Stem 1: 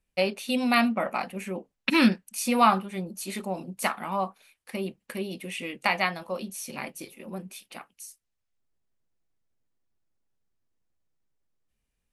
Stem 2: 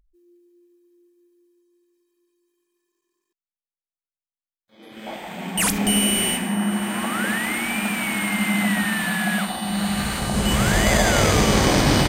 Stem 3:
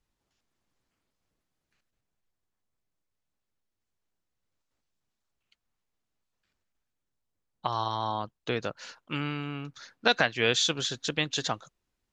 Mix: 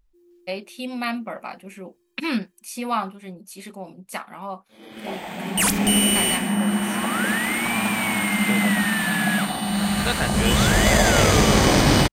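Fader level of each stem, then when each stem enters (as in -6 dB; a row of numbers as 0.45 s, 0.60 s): -4.5 dB, +1.0 dB, -2.5 dB; 0.30 s, 0.00 s, 0.00 s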